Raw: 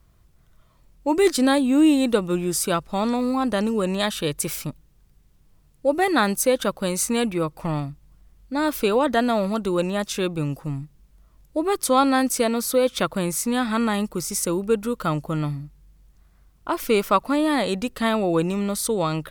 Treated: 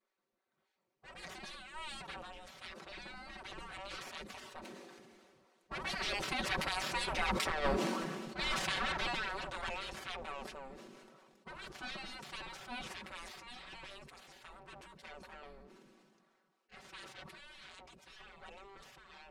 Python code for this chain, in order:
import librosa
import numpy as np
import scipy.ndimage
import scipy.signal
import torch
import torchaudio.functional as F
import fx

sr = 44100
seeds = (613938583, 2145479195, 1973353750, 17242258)

y = fx.lower_of_two(x, sr, delay_ms=5.9)
y = fx.doppler_pass(y, sr, speed_mps=8, closest_m=2.5, pass_at_s=7.6)
y = fx.spec_gate(y, sr, threshold_db=-20, keep='weak')
y = fx.high_shelf(y, sr, hz=5700.0, db=11.5)
y = y + 0.63 * np.pad(y, (int(5.3 * sr / 1000.0), 0))[:len(y)]
y = fx.over_compress(y, sr, threshold_db=-40.0, ratio=-0.5)
y = fx.spacing_loss(y, sr, db_at_10k=28)
y = fx.sustainer(y, sr, db_per_s=26.0)
y = y * 10.0 ** (12.5 / 20.0)